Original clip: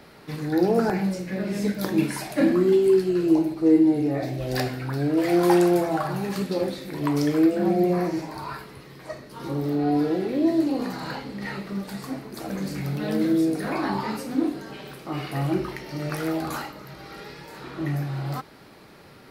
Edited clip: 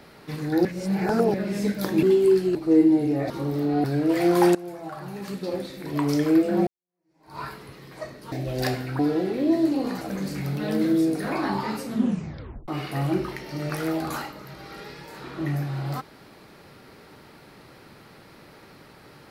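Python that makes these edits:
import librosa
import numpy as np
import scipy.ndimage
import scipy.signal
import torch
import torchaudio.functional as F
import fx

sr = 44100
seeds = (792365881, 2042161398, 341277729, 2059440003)

y = fx.edit(x, sr, fx.reverse_span(start_s=0.65, length_s=0.69),
    fx.cut(start_s=2.03, length_s=0.62),
    fx.cut(start_s=3.17, length_s=0.33),
    fx.swap(start_s=4.25, length_s=0.67, other_s=9.4, other_length_s=0.54),
    fx.fade_in_from(start_s=5.63, length_s=1.61, floor_db=-20.5),
    fx.fade_in_span(start_s=7.75, length_s=0.72, curve='exp'),
    fx.cut(start_s=10.96, length_s=1.45),
    fx.tape_stop(start_s=14.25, length_s=0.83), tone=tone)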